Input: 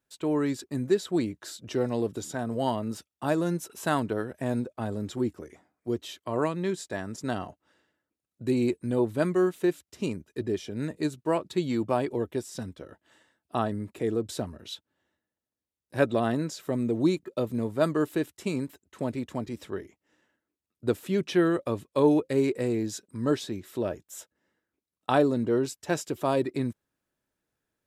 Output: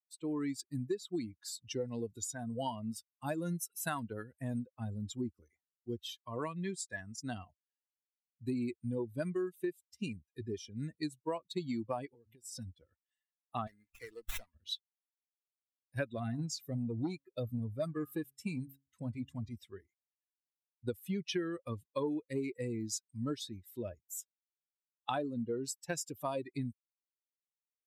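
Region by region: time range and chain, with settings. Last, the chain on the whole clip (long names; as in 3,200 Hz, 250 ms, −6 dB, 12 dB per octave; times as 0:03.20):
0:12.06–0:12.52: hum removal 109.9 Hz, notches 3 + downward compressor 12 to 1, threshold −36 dBFS
0:13.67–0:14.55: meter weighting curve ITU-R 468 + windowed peak hold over 9 samples
0:16.17–0:19.58: parametric band 85 Hz +5.5 dB 1.5 octaves + hum removal 136.7 Hz, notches 12 + saturating transformer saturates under 550 Hz
whole clip: spectral dynamics exaggerated over time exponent 2; high-shelf EQ 3,700 Hz +6.5 dB; downward compressor 6 to 1, threshold −34 dBFS; level +1 dB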